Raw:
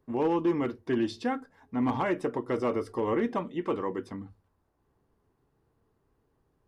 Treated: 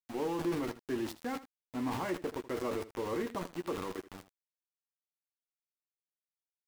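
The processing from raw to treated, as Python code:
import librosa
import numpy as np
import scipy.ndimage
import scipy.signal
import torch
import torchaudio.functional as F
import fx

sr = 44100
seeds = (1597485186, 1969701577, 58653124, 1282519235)

y = np.where(np.abs(x) >= 10.0 ** (-33.5 / 20.0), x, 0.0)
y = fx.transient(y, sr, attack_db=1, sustain_db=8)
y = fx.room_early_taps(y, sr, ms=(11, 79), db=(-9.5, -15.5))
y = y * librosa.db_to_amplitude(-8.5)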